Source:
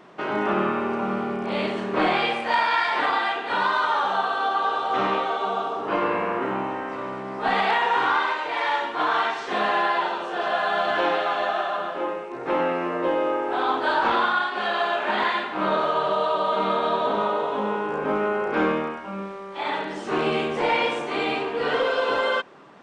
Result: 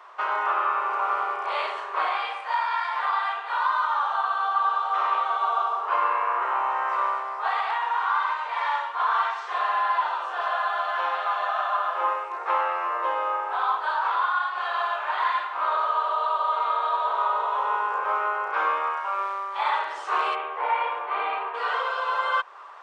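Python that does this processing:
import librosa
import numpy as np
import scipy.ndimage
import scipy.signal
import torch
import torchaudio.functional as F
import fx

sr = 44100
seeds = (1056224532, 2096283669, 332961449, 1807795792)

y = fx.air_absorb(x, sr, metres=470.0, at=(20.34, 21.53), fade=0.02)
y = scipy.signal.sosfilt(scipy.signal.bessel(8, 780.0, 'highpass', norm='mag', fs=sr, output='sos'), y)
y = fx.rider(y, sr, range_db=10, speed_s=0.5)
y = fx.peak_eq(y, sr, hz=1100.0, db=12.5, octaves=0.9)
y = F.gain(torch.from_numpy(y), -7.0).numpy()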